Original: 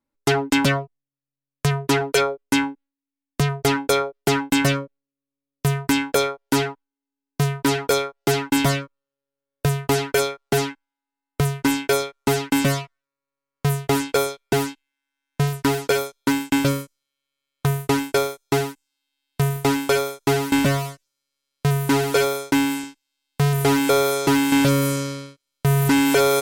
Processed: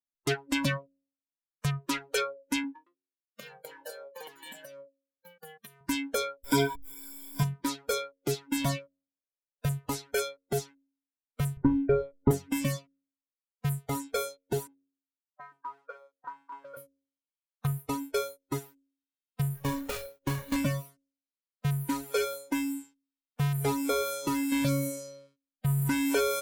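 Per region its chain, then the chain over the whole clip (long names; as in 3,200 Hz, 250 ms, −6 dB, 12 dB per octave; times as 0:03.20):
0:02.64–0:05.81: high-pass filter 400 Hz 6 dB per octave + delay with pitch and tempo change per echo 112 ms, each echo +2 semitones, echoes 2, each echo −6 dB + downward compressor, threshold −25 dBFS
0:06.44–0:07.43: converter with a step at zero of −22.5 dBFS + EQ curve with evenly spaced ripples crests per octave 1.7, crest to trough 11 dB
0:11.57–0:12.31: low-pass filter 3,200 Hz + spectral tilt −4 dB per octave
0:14.67–0:16.77: envelope filter 410–1,100 Hz, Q 2.1, up, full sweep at −24.5 dBFS + single-tap delay 845 ms −5 dB + one half of a high-frequency compander decoder only
0:19.55–0:20.56: gap after every zero crossing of 0.25 ms + low-shelf EQ 190 Hz +4.5 dB + log-companded quantiser 8 bits
whole clip: hum removal 91.48 Hz, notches 7; noise reduction from a noise print of the clip's start 18 dB; level −8.5 dB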